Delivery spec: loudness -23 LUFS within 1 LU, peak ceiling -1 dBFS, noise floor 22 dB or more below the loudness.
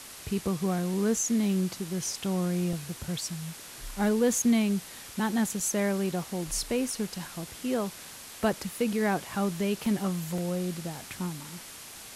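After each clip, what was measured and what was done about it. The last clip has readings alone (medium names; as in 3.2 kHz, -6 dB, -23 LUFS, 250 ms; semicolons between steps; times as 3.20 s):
dropouts 6; longest dropout 2.1 ms; noise floor -45 dBFS; noise floor target -52 dBFS; loudness -29.5 LUFS; peak level -14.5 dBFS; loudness target -23.0 LUFS
-> interpolate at 2.73/4.38/5.60/8.53/9.86/10.38 s, 2.1 ms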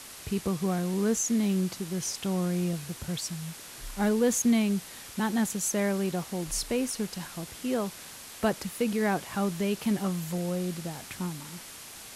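dropouts 0; noise floor -45 dBFS; noise floor target -52 dBFS
-> noise reduction 7 dB, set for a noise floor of -45 dBFS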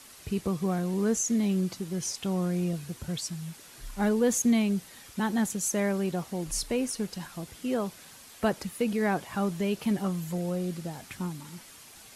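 noise floor -51 dBFS; noise floor target -52 dBFS
-> noise reduction 6 dB, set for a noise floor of -51 dBFS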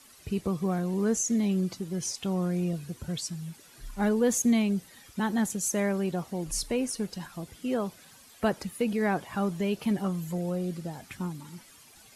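noise floor -55 dBFS; loudness -30.0 LUFS; peak level -15.0 dBFS; loudness target -23.0 LUFS
-> trim +7 dB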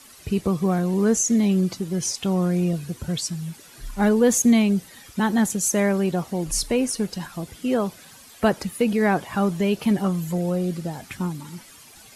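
loudness -23.0 LUFS; peak level -8.0 dBFS; noise floor -48 dBFS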